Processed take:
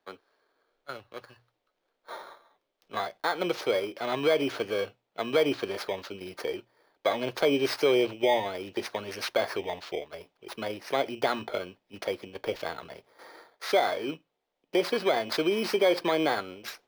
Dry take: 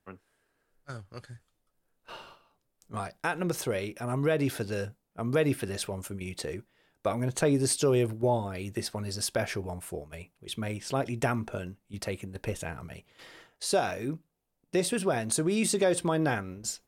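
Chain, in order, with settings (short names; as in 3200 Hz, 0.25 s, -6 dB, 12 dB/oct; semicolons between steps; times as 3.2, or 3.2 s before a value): FFT order left unsorted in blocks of 16 samples; three-band isolator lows -22 dB, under 340 Hz, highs -23 dB, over 4300 Hz; notches 60/120 Hz; in parallel at +2.5 dB: limiter -23.5 dBFS, peak gain reduction 8.5 dB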